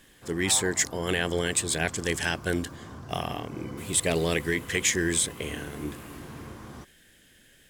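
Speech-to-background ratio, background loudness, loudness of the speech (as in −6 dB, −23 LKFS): 15.5 dB, −42.5 LKFS, −27.0 LKFS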